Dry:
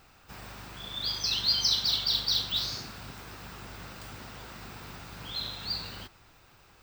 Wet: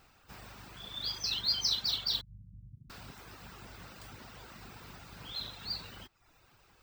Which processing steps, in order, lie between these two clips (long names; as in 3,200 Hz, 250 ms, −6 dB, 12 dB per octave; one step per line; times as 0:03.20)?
0:02.21–0:02.90: inverse Chebyshev low-pass filter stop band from 760 Hz, stop band 70 dB
reverb reduction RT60 0.65 s
level −4 dB